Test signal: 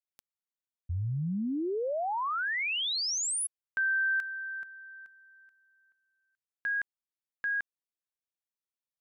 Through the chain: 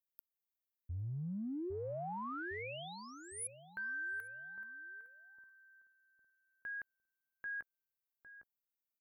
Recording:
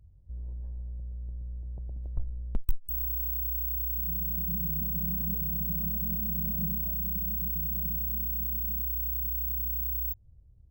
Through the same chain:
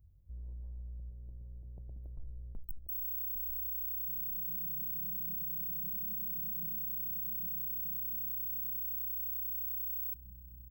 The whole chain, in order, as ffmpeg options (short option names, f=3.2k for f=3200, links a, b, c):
-filter_complex "[0:a]firequalizer=gain_entry='entry(420,0);entry(6500,-29);entry(12000,12)':delay=0.05:min_phase=1,asplit=2[a][b];[b]adelay=807,lowpass=f=810:p=1,volume=-7.5dB,asplit=2[c][d];[d]adelay=807,lowpass=f=810:p=1,volume=0.37,asplit=2[e][f];[f]adelay=807,lowpass=f=810:p=1,volume=0.37,asplit=2[g][h];[h]adelay=807,lowpass=f=810:p=1,volume=0.37[i];[a][c][e][g][i]amix=inputs=5:normalize=0,areverse,acompressor=threshold=-32dB:ratio=4:attack=1.5:release=30:knee=1:detection=rms,areverse,volume=-6.5dB"